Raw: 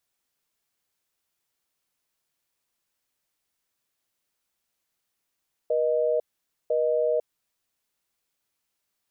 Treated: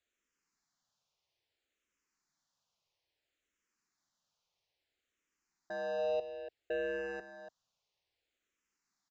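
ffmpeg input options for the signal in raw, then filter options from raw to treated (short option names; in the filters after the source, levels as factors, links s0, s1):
-f lavfi -i "aevalsrc='0.0668*(sin(2*PI*480*t)+sin(2*PI*620*t))*clip(min(mod(t,1),0.5-mod(t,1))/0.005,0,1)':d=1.75:s=44100"
-filter_complex "[0:a]aresample=16000,asoftclip=type=tanh:threshold=0.0316,aresample=44100,aecho=1:1:287:0.282,asplit=2[s0][s1];[s1]afreqshift=-0.6[s2];[s0][s2]amix=inputs=2:normalize=1"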